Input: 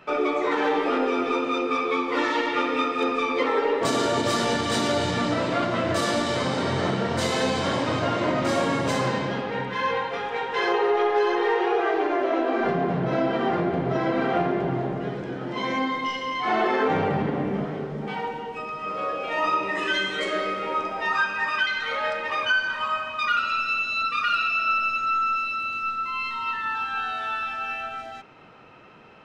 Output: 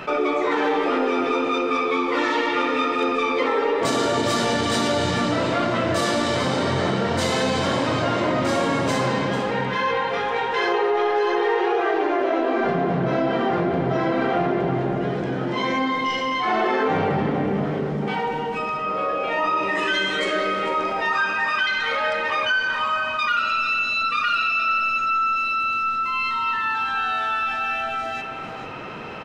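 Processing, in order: 18.77–19.57 high shelf 4400 Hz -7.5 dB; echo 0.445 s -14 dB; fast leveller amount 50%

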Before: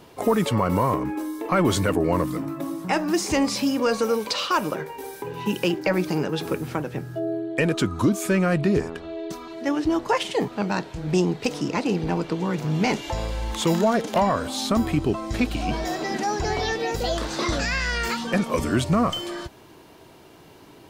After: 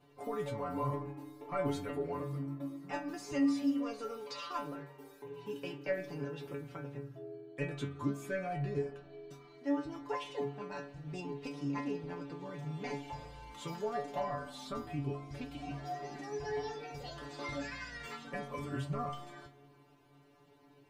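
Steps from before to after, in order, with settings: high shelf 3400 Hz -9.5 dB; metallic resonator 140 Hz, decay 0.36 s, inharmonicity 0.002; spring tank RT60 1.8 s, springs 43 ms, chirp 30 ms, DRR 16 dB; gain -2.5 dB

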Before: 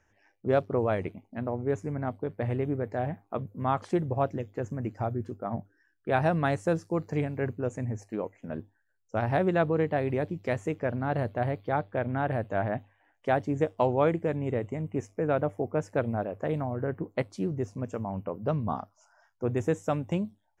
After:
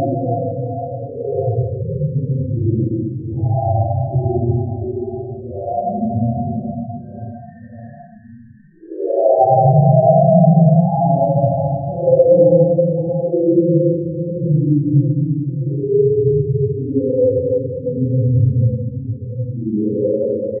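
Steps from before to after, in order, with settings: loudest bins only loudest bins 2; reverb removal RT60 0.91 s; on a send: reverse bouncing-ball echo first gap 50 ms, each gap 1.25×, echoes 5; on the sum: Paulstretch 5.2×, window 0.10 s, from 4.34; maximiser +19 dB; gain -1 dB

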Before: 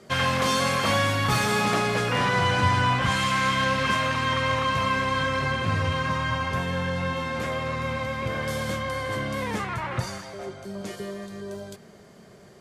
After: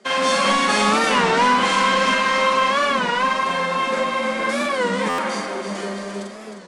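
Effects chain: steep high-pass 190 Hz 96 dB/oct; de-hum 367.1 Hz, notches 34; AGC gain up to 3 dB; in parallel at -5.5 dB: requantised 6-bit, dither none; on the sum: time stretch by phase-locked vocoder 0.53×; soft clip -13.5 dBFS, distortion -17 dB; doubler 44 ms -2 dB; on a send: feedback echo 0.325 s, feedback 56%, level -8 dB; on the sum: downsampling 22050 Hz; stuck buffer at 5.09, samples 512, times 7; record warp 33 1/3 rpm, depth 160 cents

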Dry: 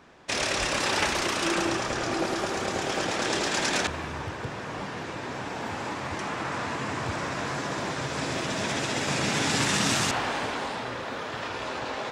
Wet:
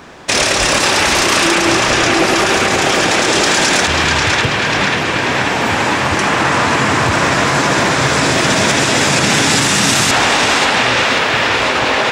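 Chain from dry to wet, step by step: high shelf 7200 Hz +6 dB; on a send: narrowing echo 0.539 s, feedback 78%, band-pass 2200 Hz, level -4 dB; on the sum: maximiser +19 dB; gain -2 dB

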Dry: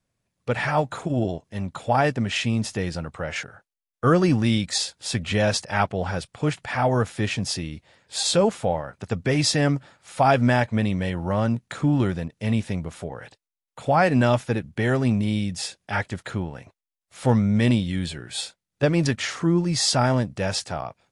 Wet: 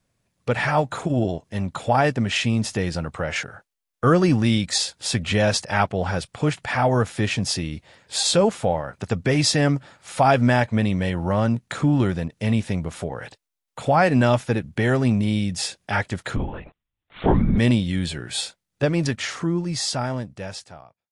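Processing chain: ending faded out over 2.97 s; 16.36–17.58 LPC vocoder at 8 kHz whisper; in parallel at -1 dB: compressor, threshold -31 dBFS, peak gain reduction 16.5 dB

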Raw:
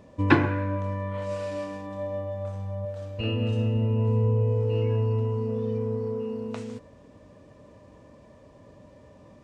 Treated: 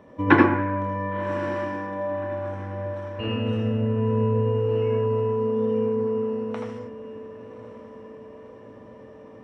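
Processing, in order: diffused feedback echo 1.102 s, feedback 54%, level -15 dB; reverb RT60 0.25 s, pre-delay 77 ms, DRR 2 dB; gain -7 dB

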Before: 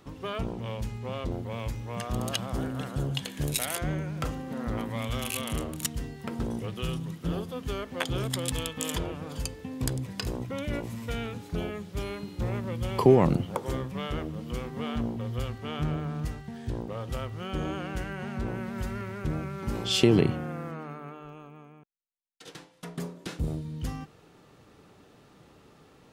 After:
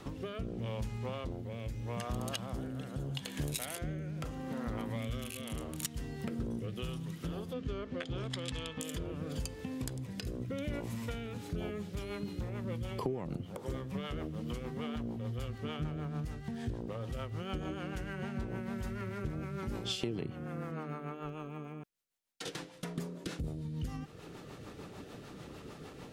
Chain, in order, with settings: 7.53–8.81 LPF 5000 Hz 12 dB/oct; compressor 5:1, threshold -45 dBFS, peak gain reduction 27.5 dB; rotary speaker horn 0.8 Hz, later 6.7 Hz, at 10.96; gain +9.5 dB

